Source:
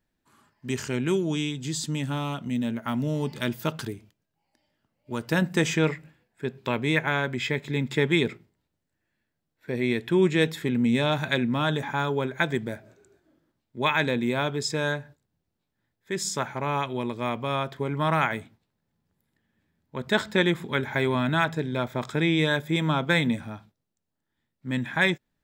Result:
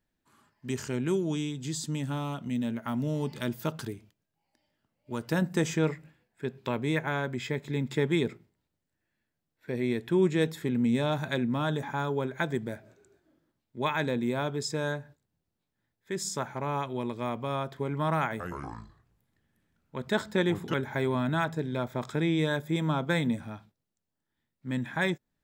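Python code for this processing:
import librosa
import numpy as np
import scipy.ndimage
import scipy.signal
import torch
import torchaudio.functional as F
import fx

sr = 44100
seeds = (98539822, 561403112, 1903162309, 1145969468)

y = fx.echo_pitch(x, sr, ms=115, semitones=-4, count=3, db_per_echo=-3.0, at=(18.28, 20.74))
y = fx.dynamic_eq(y, sr, hz=2600.0, q=0.89, threshold_db=-41.0, ratio=4.0, max_db=-7)
y = y * librosa.db_to_amplitude(-3.0)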